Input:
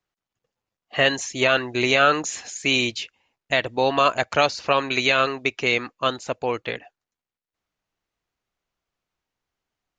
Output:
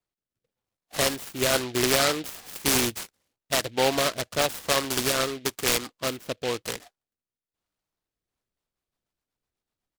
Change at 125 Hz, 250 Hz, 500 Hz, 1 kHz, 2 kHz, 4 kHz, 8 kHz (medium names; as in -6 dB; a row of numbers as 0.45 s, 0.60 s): -2.0 dB, -2.5 dB, -4.0 dB, -7.5 dB, -7.5 dB, -2.5 dB, +6.0 dB